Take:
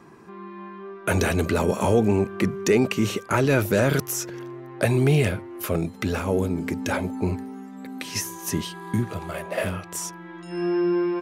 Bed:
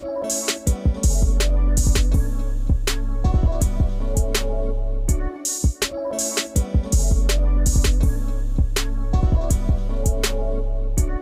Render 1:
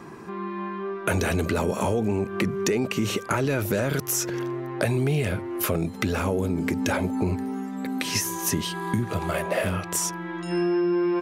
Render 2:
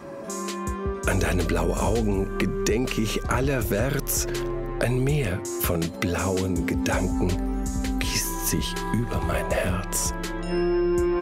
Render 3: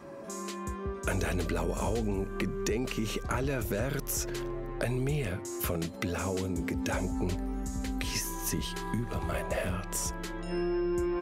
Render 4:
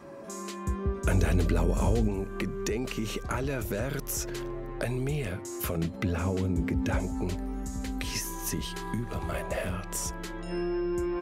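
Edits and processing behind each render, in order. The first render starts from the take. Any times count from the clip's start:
in parallel at +2 dB: limiter -18.5 dBFS, peak gain reduction 11 dB; on the sum: compressor 4:1, threshold -22 dBFS, peak gain reduction 9.5 dB
add bed -12.5 dB
gain -7.5 dB
0.67–2.08 low shelf 270 Hz +9 dB; 5.77–7 tone controls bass +7 dB, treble -7 dB

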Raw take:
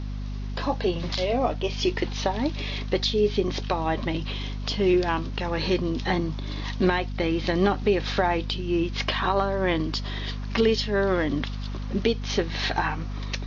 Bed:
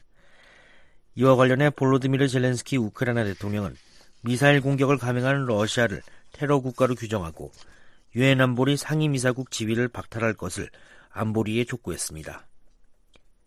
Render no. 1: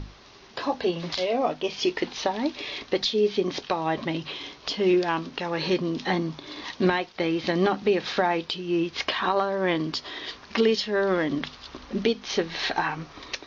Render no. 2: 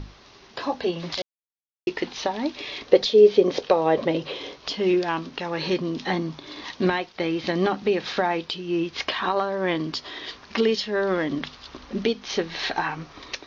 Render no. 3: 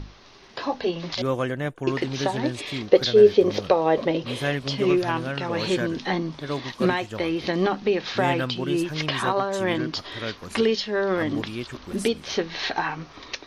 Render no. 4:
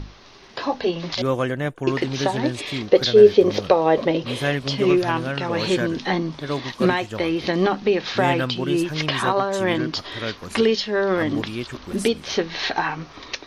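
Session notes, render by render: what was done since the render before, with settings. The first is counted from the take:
notches 50/100/150/200/250 Hz
1.22–1.87 mute; 2.86–4.56 bell 500 Hz +14.5 dB 0.72 oct
add bed -8 dB
gain +3 dB; limiter -2 dBFS, peak gain reduction 2.5 dB

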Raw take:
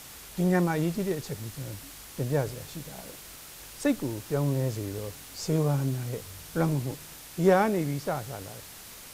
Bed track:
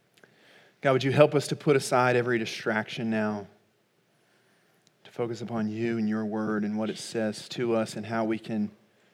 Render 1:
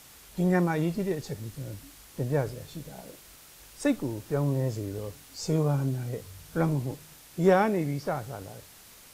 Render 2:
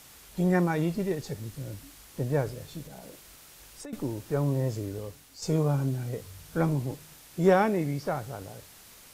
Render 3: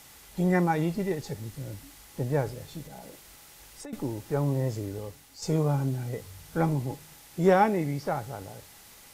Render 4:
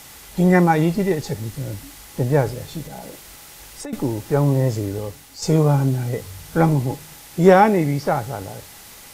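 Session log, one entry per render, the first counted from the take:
noise print and reduce 6 dB
2.86–3.93 compressor, threshold -40 dBFS; 4.84–5.42 fade out, to -6.5 dB
small resonant body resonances 830/2000 Hz, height 10 dB, ringing for 90 ms
gain +9.5 dB; limiter -2 dBFS, peak gain reduction 1.5 dB

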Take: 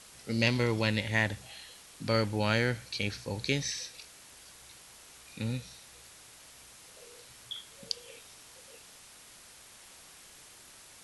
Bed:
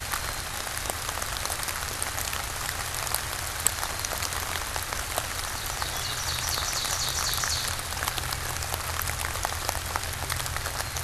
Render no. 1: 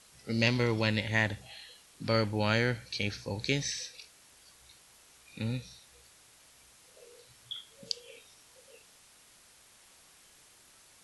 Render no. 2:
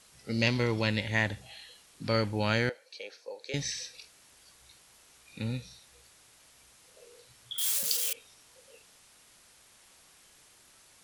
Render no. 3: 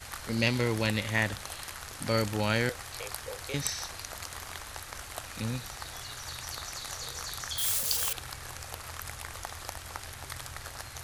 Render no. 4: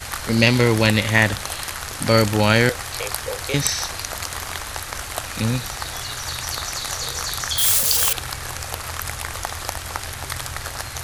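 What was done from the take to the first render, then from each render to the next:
noise print and reduce 6 dB
2.69–3.54 ladder high-pass 450 Hz, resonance 60%; 7.58–8.13 switching spikes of -22.5 dBFS
add bed -11 dB
gain +12 dB; limiter -1 dBFS, peak gain reduction 3 dB

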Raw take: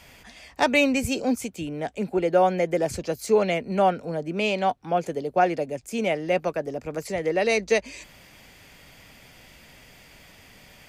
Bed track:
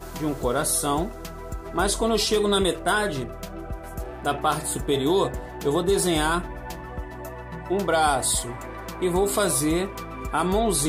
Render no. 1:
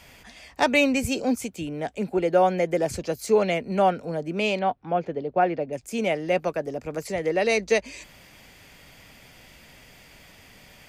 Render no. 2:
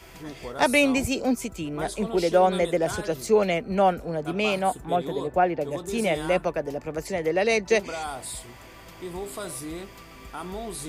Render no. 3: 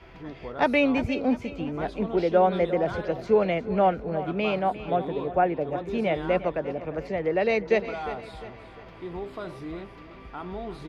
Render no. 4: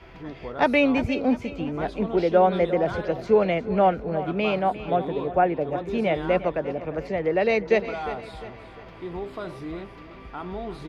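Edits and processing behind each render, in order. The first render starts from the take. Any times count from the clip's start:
4.59–5.73 air absorption 280 m
add bed track -12.5 dB
air absorption 300 m; feedback echo 0.352 s, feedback 44%, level -14 dB
gain +2 dB

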